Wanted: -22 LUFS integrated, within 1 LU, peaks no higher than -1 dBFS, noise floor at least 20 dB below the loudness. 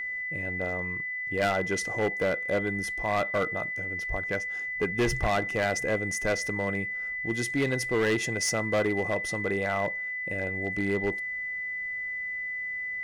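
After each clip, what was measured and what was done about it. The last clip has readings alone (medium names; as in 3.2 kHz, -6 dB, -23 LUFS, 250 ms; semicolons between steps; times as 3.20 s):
clipped samples 1.2%; clipping level -20.5 dBFS; steady tone 2 kHz; tone level -31 dBFS; loudness -28.5 LUFS; peak level -20.5 dBFS; loudness target -22.0 LUFS
-> clip repair -20.5 dBFS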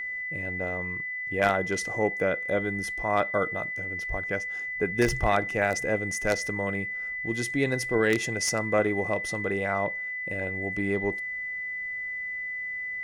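clipped samples 0.0%; steady tone 2 kHz; tone level -31 dBFS
-> band-stop 2 kHz, Q 30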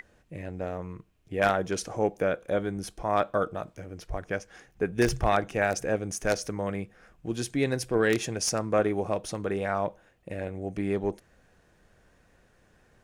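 steady tone not found; loudness -29.5 LUFS; peak level -10.5 dBFS; loudness target -22.0 LUFS
-> trim +7.5 dB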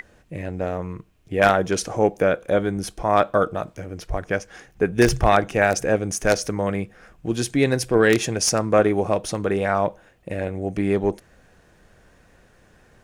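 loudness -22.0 LUFS; peak level -3.0 dBFS; noise floor -56 dBFS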